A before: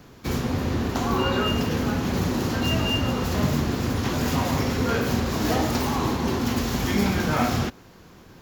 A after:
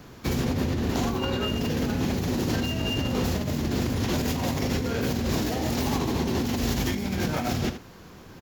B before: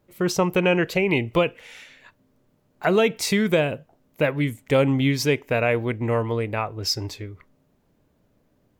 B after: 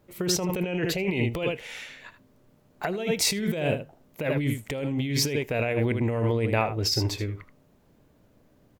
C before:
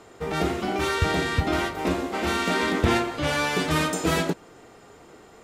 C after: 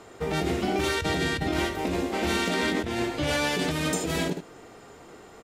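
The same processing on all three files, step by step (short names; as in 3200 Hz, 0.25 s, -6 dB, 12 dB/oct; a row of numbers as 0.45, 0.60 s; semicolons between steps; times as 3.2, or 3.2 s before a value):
on a send: echo 78 ms -11.5 dB; on the sum: dynamic EQ 1200 Hz, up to -7 dB, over -41 dBFS, Q 1.6; negative-ratio compressor -26 dBFS, ratio -1; match loudness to -27 LUFS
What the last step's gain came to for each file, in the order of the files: -0.5, 0.0, 0.0 dB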